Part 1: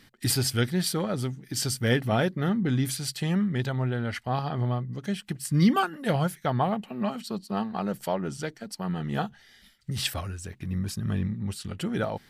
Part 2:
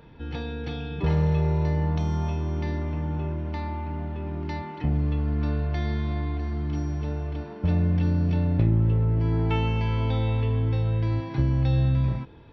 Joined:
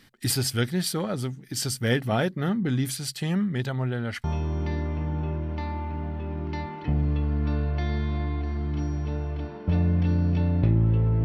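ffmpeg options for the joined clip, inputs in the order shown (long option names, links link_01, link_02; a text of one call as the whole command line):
ffmpeg -i cue0.wav -i cue1.wav -filter_complex "[0:a]apad=whole_dur=11.24,atrim=end=11.24,atrim=end=4.242[link_01];[1:a]atrim=start=2.198:end=9.2[link_02];[link_01][link_02]acrossfade=duration=0.004:curve1=hsin:curve2=hsin" out.wav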